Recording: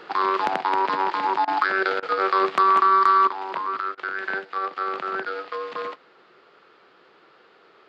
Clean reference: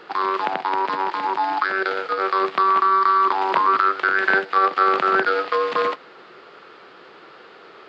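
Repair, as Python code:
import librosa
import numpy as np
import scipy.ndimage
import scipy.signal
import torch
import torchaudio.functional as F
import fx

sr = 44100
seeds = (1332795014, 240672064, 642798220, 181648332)

y = fx.fix_declip(x, sr, threshold_db=-7.5)
y = fx.fix_interpolate(y, sr, at_s=(1.45, 2.0, 3.95), length_ms=25.0)
y = fx.fix_level(y, sr, at_s=3.27, step_db=10.0)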